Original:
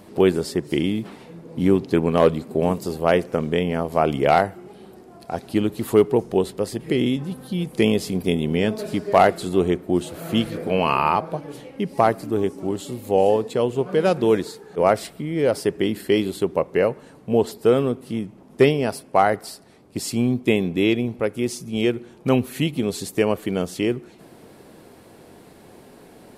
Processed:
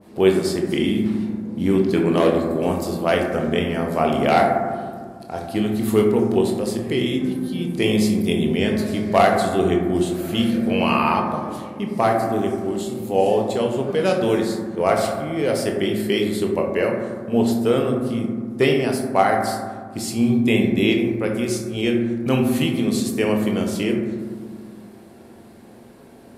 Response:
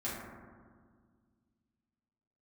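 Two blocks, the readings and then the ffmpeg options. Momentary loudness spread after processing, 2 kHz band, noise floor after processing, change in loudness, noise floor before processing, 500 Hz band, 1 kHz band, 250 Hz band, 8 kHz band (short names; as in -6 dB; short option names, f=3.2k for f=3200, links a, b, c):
9 LU, +2.5 dB, -44 dBFS, +1.0 dB, -48 dBFS, 0.0 dB, +1.0 dB, +3.0 dB, +2.5 dB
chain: -filter_complex "[0:a]asplit=2[a][b];[1:a]atrim=start_sample=2205,adelay=21[c];[b][c]afir=irnorm=-1:irlink=0,volume=-4.5dB[d];[a][d]amix=inputs=2:normalize=0,adynamicequalizer=threshold=0.0282:dfrequency=1700:dqfactor=0.7:tfrequency=1700:tqfactor=0.7:attack=5:release=100:ratio=0.375:range=3:mode=boostabove:tftype=highshelf,volume=-3.5dB"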